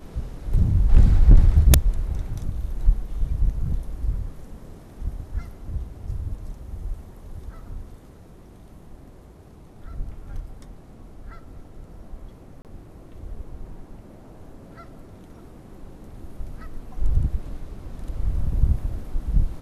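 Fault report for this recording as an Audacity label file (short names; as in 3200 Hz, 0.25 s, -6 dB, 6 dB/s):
12.620000	12.650000	gap 28 ms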